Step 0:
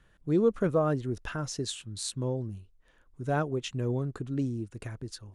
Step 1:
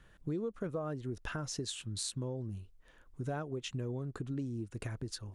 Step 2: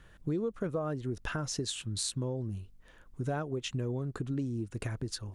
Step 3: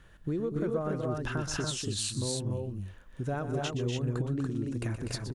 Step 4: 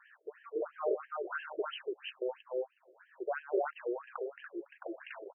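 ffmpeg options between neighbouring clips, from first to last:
-af "acompressor=threshold=0.0141:ratio=6,volume=1.26"
-af "aeval=exprs='val(0)+0.000282*(sin(2*PI*50*n/s)+sin(2*PI*2*50*n/s)/2+sin(2*PI*3*50*n/s)/3+sin(2*PI*4*50*n/s)/4+sin(2*PI*5*50*n/s)/5)':c=same,volume=1.58"
-af "aecho=1:1:122.4|244.9|285.7:0.282|0.447|0.708"
-af "afftfilt=real='re*between(b*sr/1024,450*pow(2300/450,0.5+0.5*sin(2*PI*3*pts/sr))/1.41,450*pow(2300/450,0.5+0.5*sin(2*PI*3*pts/sr))*1.41)':imag='im*between(b*sr/1024,450*pow(2300/450,0.5+0.5*sin(2*PI*3*pts/sr))/1.41,450*pow(2300/450,0.5+0.5*sin(2*PI*3*pts/sr))*1.41)':win_size=1024:overlap=0.75,volume=1.78"

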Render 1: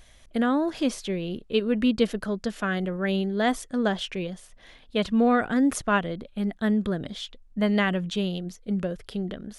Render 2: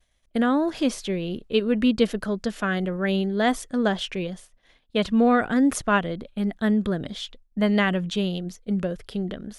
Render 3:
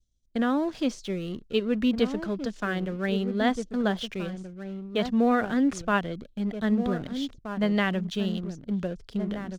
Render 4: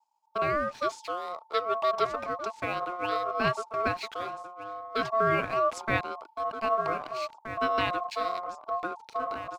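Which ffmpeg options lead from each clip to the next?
-af "agate=range=0.0224:threshold=0.00891:ratio=3:detection=peak,volume=1.26"
-filter_complex "[0:a]lowpass=f=6900:w=0.5412,lowpass=f=6900:w=1.3066,asplit=2[s0][s1];[s1]adelay=1574,volume=0.398,highshelf=f=4000:g=-35.4[s2];[s0][s2]amix=inputs=2:normalize=0,acrossover=split=370|4600[s3][s4][s5];[s4]aeval=exprs='sgn(val(0))*max(abs(val(0))-0.00562,0)':c=same[s6];[s3][s6][s5]amix=inputs=3:normalize=0,volume=0.668"
-af "aeval=exprs='val(0)*sin(2*PI*890*n/s)':c=same"

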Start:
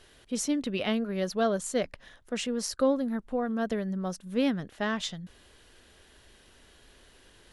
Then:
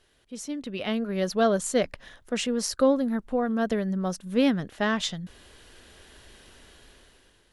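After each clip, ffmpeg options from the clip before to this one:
-af "dynaudnorm=f=380:g=5:m=5.01,volume=0.398"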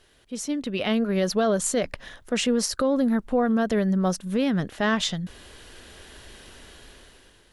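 -af "alimiter=limit=0.1:level=0:latency=1:release=57,volume=1.88"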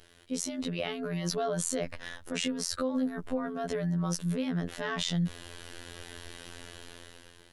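-af "alimiter=level_in=1.06:limit=0.0631:level=0:latency=1:release=18,volume=0.944,afftfilt=real='hypot(re,im)*cos(PI*b)':imag='0':win_size=2048:overlap=0.75,volume=1.58"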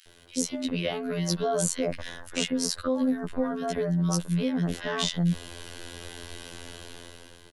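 -filter_complex "[0:a]acrossover=split=1600[s0][s1];[s0]adelay=60[s2];[s2][s1]amix=inputs=2:normalize=0,volume=1.68"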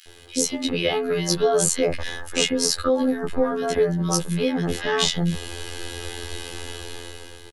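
-filter_complex "[0:a]asplit=2[s0][s1];[s1]adelay=14,volume=0.708[s2];[s0][s2]amix=inputs=2:normalize=0,volume=2"

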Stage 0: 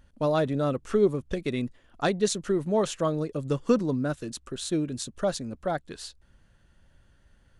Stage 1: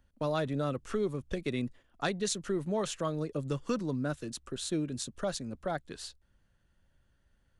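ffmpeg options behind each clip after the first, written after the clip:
-filter_complex "[0:a]agate=range=0.447:threshold=0.00398:ratio=16:detection=peak,acrossover=split=140|1100[s0][s1][s2];[s1]alimiter=limit=0.0841:level=0:latency=1:release=299[s3];[s0][s3][s2]amix=inputs=3:normalize=0,volume=0.708"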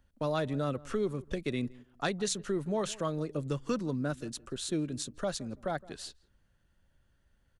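-filter_complex "[0:a]asplit=2[s0][s1];[s1]adelay=166,lowpass=f=1400:p=1,volume=0.0944,asplit=2[s2][s3];[s3]adelay=166,lowpass=f=1400:p=1,volume=0.24[s4];[s0][s2][s4]amix=inputs=3:normalize=0"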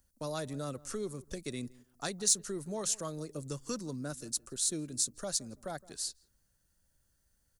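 -af "aexciter=amount=3.7:drive=8.8:freq=4500,volume=0.473"

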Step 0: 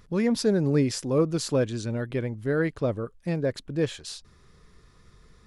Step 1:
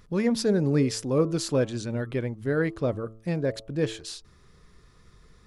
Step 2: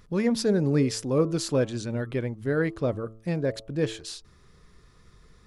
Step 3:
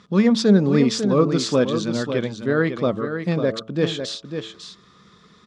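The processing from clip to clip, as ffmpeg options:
-af "bandreject=f=110.8:t=h:w=4,bandreject=f=221.6:t=h:w=4,bandreject=f=332.4:t=h:w=4,bandreject=f=443.2:t=h:w=4,bandreject=f=554:t=h:w=4,bandreject=f=664.8:t=h:w=4,bandreject=f=775.6:t=h:w=4,bandreject=f=886.4:t=h:w=4,bandreject=f=997.2:t=h:w=4,bandreject=f=1108:t=h:w=4,bandreject=f=1218.8:t=h:w=4,bandreject=f=1329.6:t=h:w=4"
-af anull
-af "highpass=160,equalizer=f=200:t=q:w=4:g=9,equalizer=f=1200:t=q:w=4:g=7,equalizer=f=3500:t=q:w=4:g=9,lowpass=f=7300:w=0.5412,lowpass=f=7300:w=1.3066,aecho=1:1:548:0.398,volume=1.78"

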